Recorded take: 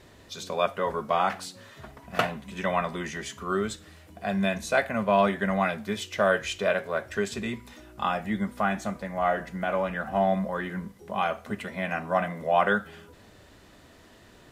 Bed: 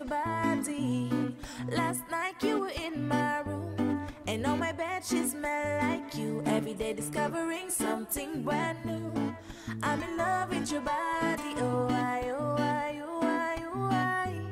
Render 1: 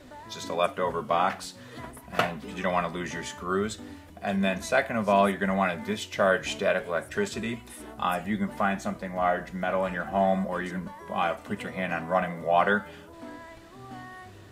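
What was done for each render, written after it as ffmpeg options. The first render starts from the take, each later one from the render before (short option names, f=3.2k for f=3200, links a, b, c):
-filter_complex "[1:a]volume=-14dB[a];[0:a][a]amix=inputs=2:normalize=0"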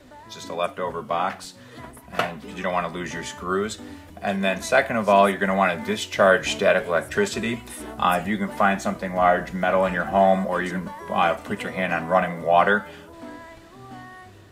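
-filter_complex "[0:a]acrossover=split=270|4300[a][b][c];[a]alimiter=level_in=7dB:limit=-24dB:level=0:latency=1:release=457,volume=-7dB[d];[d][b][c]amix=inputs=3:normalize=0,dynaudnorm=f=900:g=7:m=8.5dB"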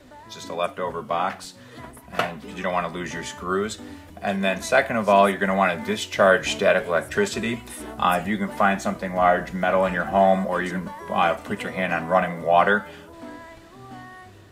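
-af anull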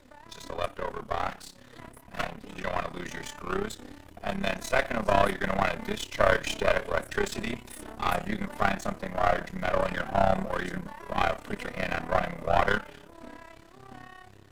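-af "aeval=exprs='if(lt(val(0),0),0.251*val(0),val(0))':c=same,tremolo=f=34:d=0.788"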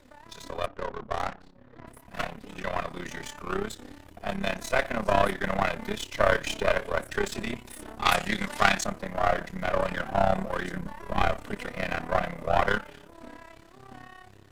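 -filter_complex "[0:a]asettb=1/sr,asplit=3[a][b][c];[a]atrim=end=0.664[d];[b]atrim=start=0.66:end=1.87,asetpts=PTS-STARTPTS,afade=t=in:d=0.004:c=qsin,afade=t=out:st=1.206:d=0.004:c=qsin,adynamicsmooth=sensitivity=6:basefreq=1.1k[e];[c]atrim=start=1.866[f];[d][e]acrossfade=d=0.004:c1=hsin:c2=qsin[g];[g][f]acrossfade=d=0.004:c1=qsin:c2=hsin,asettb=1/sr,asplit=3[h][i][j];[h]atrim=end=8.054[k];[i]atrim=start=8.05:end=8.84,asetpts=PTS-STARTPTS,afade=t=in:d=0.004:c=qsin,afade=t=out:st=0.786:d=0.004:c=qsin,equalizer=f=5.1k:w=0.32:g=12.5[l];[j]atrim=start=8.836[m];[k][l]acrossfade=d=0.004:c1=hsin:c2=qsin[n];[n][m]acrossfade=d=0.004:c1=qsin:c2=hsin,asettb=1/sr,asplit=3[o][p][q];[o]atrim=end=10.804[r];[p]atrim=start=10.8:end=11.47,asetpts=PTS-STARTPTS,afade=t=in:d=0.004:c=qsin,afade=t=out:st=0.666:d=0.004:c=qsin,lowshelf=f=190:g=7[s];[q]atrim=start=11.466[t];[r][s]acrossfade=d=0.004:c1=hsin:c2=qsin[u];[u][t]acrossfade=d=0.004:c1=qsin:c2=hsin"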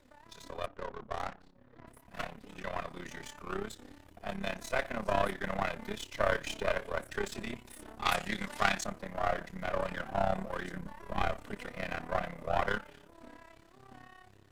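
-af "volume=-7dB"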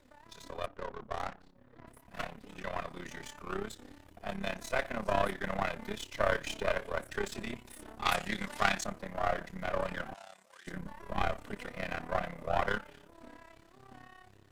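-filter_complex "[0:a]asettb=1/sr,asplit=3[a][b][c];[a]atrim=end=10.144[d];[b]atrim=start=10.14:end=10.67,asetpts=PTS-STARTPTS,afade=t=in:d=0.004:c=qsin,afade=t=out:st=0.526:d=0.004:c=qsin,bandpass=f=7.3k:t=q:w=1.2[e];[c]atrim=start=10.666[f];[d][e]acrossfade=d=0.004:c1=hsin:c2=qsin[g];[g][f]acrossfade=d=0.004:c1=qsin:c2=hsin"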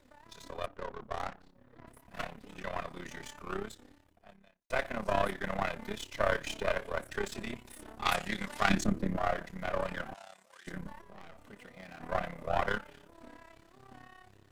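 -filter_complex "[0:a]asettb=1/sr,asplit=3[a][b][c];[a]atrim=end=8.694[d];[b]atrim=start=8.69:end=9.17,asetpts=PTS-STARTPTS,afade=t=in:d=0.004:c=qsin,afade=t=out:st=0.476:d=0.004:c=qsin,lowshelf=f=480:t=q:w=1.5:g=11.5[e];[c]atrim=start=9.166[f];[d][e]acrossfade=d=0.004:c1=hsin:c2=qsin[g];[g][f]acrossfade=d=0.004:c1=qsin:c2=hsin,asplit=3[h][i][j];[h]afade=t=out:st=11:d=0.02[k];[i]aeval=exprs='(tanh(112*val(0)+0.6)-tanh(0.6))/112':c=same,afade=t=in:st=11:d=0.02,afade=t=out:st=12:d=0.02[l];[j]afade=t=in:st=12:d=0.02[m];[k][l][m]amix=inputs=3:normalize=0,asplit=2[n][o];[n]atrim=end=4.7,asetpts=PTS-STARTPTS,afade=t=out:st=3.56:d=1.14:c=qua[p];[o]atrim=start=4.7,asetpts=PTS-STARTPTS,afade=t=in:d=0.004:c=hsin[q];[p][q]concat=n=2:v=0:a=1"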